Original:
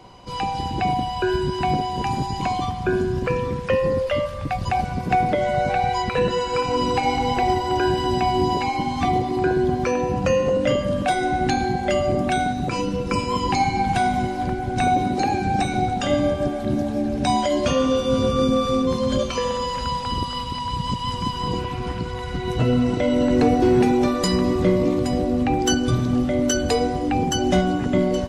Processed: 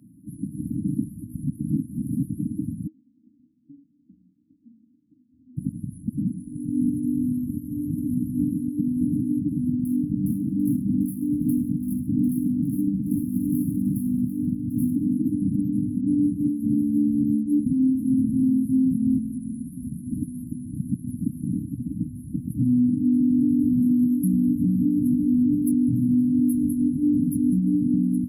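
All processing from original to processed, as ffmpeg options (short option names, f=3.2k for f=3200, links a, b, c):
-filter_complex "[0:a]asettb=1/sr,asplit=3[a][b][c];[a]atrim=end=2.874[d];[b]atrim=start=2.87:end=5.57,asetpts=PTS-STARTPTS,afade=t=in:d=0.004:c=qsin,afade=t=out:st=2.696:d=0.004:c=qsin,lowpass=f=2.7k:t=q:w=0.5098,lowpass=f=2.7k:t=q:w=0.6013,lowpass=f=2.7k:t=q:w=0.9,lowpass=f=2.7k:t=q:w=2.563,afreqshift=-3200,bandreject=f=60:t=h:w=6,bandreject=f=120:t=h:w=6,bandreject=f=180:t=h:w=6,bandreject=f=240:t=h:w=6,bandreject=f=300:t=h:w=6,bandreject=f=360:t=h:w=6,bandreject=f=420:t=h:w=6,bandreject=f=480:t=h:w=6,bandreject=f=540:t=h:w=6,bandreject=f=600:t=h:w=6[e];[c]atrim=start=5.566[f];[d][e]acrossfade=d=0.004:c1=hsin:c2=qsin[g];[g][f]acrossfade=d=0.004:c1=qsin:c2=hsin,asettb=1/sr,asplit=3[h][i][j];[h]atrim=end=9.724[k];[i]atrim=start=9.72:end=15.1,asetpts=PTS-STARTPTS,afade=t=in:d=0.004:c=qsin,afade=t=out:st=5.376:d=0.004:c=qsin,adynamicsmooth=sensitivity=7:basefreq=1.4k,aecho=1:1:745:0.237,atrim=end_sample=237258[l];[j]atrim=start=15.096[m];[k][l]acrossfade=d=0.004:c1=hsin:c2=qsin[n];[n][m]acrossfade=d=0.004:c1=qsin:c2=hsin,asettb=1/sr,asplit=3[o][p][q];[o]atrim=end=25.714[r];[p]atrim=start=25.71:end=26.33,asetpts=PTS-STARTPTS,afade=t=in:d=0.004:c=qsin,afade=t=out:st=0.616:d=0.004:c=qsin,acrossover=split=3800[s][t];[t]acompressor=threshold=-42dB:ratio=4:attack=1:release=60[u];[s][u]amix=inputs=2:normalize=0,highpass=69[v];[q]atrim=start=26.326[w];[r][v]acrossfade=d=0.004:c1=hsin:c2=qsin[x];[x][w]acrossfade=d=0.004:c1=qsin:c2=hsin,afftfilt=real='re*(1-between(b*sr/4096,320,9800))':imag='im*(1-between(b*sr/4096,320,9800))':win_size=4096:overlap=0.75,highpass=210,alimiter=limit=-20.5dB:level=0:latency=1:release=150,volume=7dB"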